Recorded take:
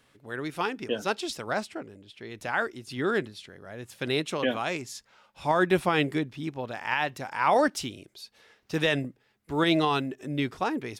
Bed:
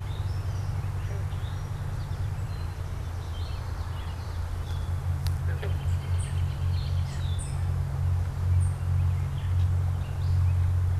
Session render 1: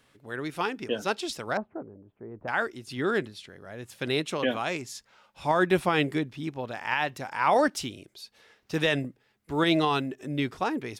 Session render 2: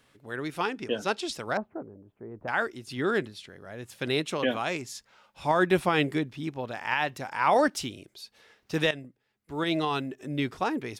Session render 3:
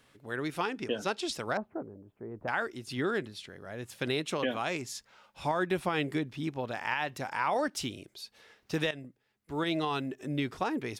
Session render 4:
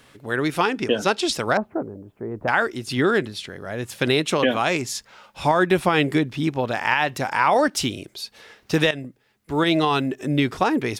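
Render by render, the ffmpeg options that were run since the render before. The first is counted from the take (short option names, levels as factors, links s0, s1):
-filter_complex "[0:a]asettb=1/sr,asplit=3[s0][s1][s2];[s0]atrim=end=1.574[s3];[s1]atrim=start=1.57:end=2.48,asetpts=PTS-STARTPTS,afade=t=in:d=0.004:c=qsin,afade=t=out:st=0.906:d=0.004:c=qsin,lowpass=f=1100:w=0.5412,lowpass=f=1100:w=1.3066[s4];[s2]atrim=start=2.476[s5];[s3][s4]acrossfade=d=0.004:c1=hsin:c2=qsin[s6];[s6][s5]acrossfade=d=0.004:c1=qsin:c2=hsin"
-filter_complex "[0:a]asettb=1/sr,asplit=3[s0][s1][s2];[s0]atrim=end=0.594[s3];[s1]atrim=start=0.59:end=1.35,asetpts=PTS-STARTPTS,afade=t=in:d=0.004:c=qsin,afade=t=out:st=0.756:d=0.004:c=qsin,lowpass=11000[s4];[s2]atrim=start=1.346[s5];[s3][s4]acrossfade=d=0.004:c1=hsin:c2=qsin[s6];[s6][s5]acrossfade=d=0.004:c1=qsin:c2=hsin,asplit=2[s7][s8];[s7]atrim=end=8.91,asetpts=PTS-STARTPTS,afade=t=out:st=8.906:d=0.004:c=hsin:silence=0.211349[s9];[s8]atrim=start=8.91,asetpts=PTS-STARTPTS,afade=t=in:d=1.63:silence=0.211349[s10];[s9][s10]concat=n=2:v=0:a=1"
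-af "acompressor=threshold=0.0398:ratio=3"
-af "volume=3.76"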